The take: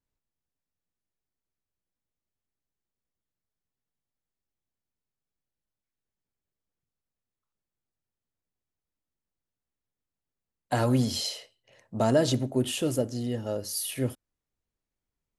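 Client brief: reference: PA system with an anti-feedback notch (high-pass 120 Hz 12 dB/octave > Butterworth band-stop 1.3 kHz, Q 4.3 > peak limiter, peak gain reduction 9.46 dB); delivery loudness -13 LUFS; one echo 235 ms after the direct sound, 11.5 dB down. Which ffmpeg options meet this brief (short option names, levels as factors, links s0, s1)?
-af "highpass=120,asuperstop=centerf=1300:order=8:qfactor=4.3,aecho=1:1:235:0.266,volume=8.41,alimiter=limit=0.75:level=0:latency=1"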